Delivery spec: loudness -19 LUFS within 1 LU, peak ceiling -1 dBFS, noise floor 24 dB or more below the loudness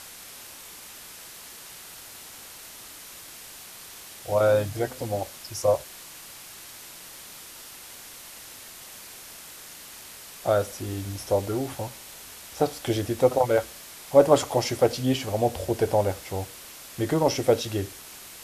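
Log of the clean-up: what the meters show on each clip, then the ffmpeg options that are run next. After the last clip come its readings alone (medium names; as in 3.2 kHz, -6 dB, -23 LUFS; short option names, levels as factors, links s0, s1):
noise floor -44 dBFS; noise floor target -50 dBFS; loudness -25.5 LUFS; peak level -3.0 dBFS; loudness target -19.0 LUFS
-> -af "afftdn=nr=6:nf=-44"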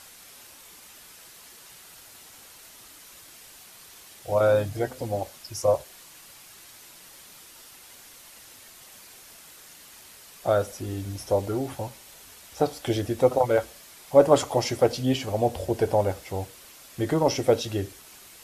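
noise floor -49 dBFS; noise floor target -50 dBFS
-> -af "afftdn=nr=6:nf=-49"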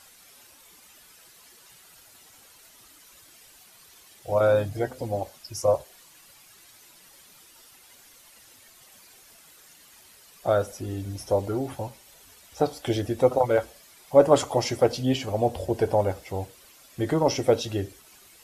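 noise floor -54 dBFS; loudness -25.5 LUFS; peak level -3.5 dBFS; loudness target -19.0 LUFS
-> -af "volume=2.11,alimiter=limit=0.891:level=0:latency=1"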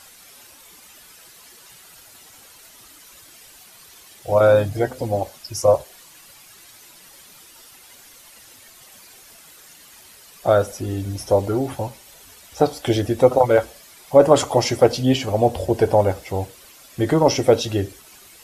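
loudness -19.5 LUFS; peak level -1.0 dBFS; noise floor -47 dBFS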